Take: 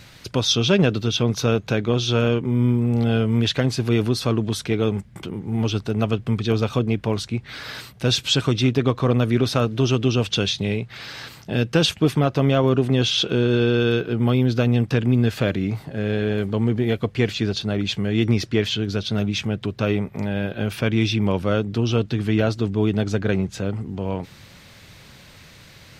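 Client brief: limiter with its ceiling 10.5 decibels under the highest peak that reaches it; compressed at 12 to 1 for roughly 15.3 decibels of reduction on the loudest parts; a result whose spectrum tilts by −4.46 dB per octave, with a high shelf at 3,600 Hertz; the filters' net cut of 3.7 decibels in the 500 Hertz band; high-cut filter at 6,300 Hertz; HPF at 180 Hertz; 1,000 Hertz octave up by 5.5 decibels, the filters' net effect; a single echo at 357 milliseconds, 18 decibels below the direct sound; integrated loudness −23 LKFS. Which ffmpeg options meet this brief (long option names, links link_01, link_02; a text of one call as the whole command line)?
ffmpeg -i in.wav -af "highpass=180,lowpass=6300,equalizer=frequency=500:width_type=o:gain=-6.5,equalizer=frequency=1000:width_type=o:gain=8.5,highshelf=frequency=3600:gain=6,acompressor=threshold=-29dB:ratio=12,alimiter=level_in=2dB:limit=-24dB:level=0:latency=1,volume=-2dB,aecho=1:1:357:0.126,volume=13.5dB" out.wav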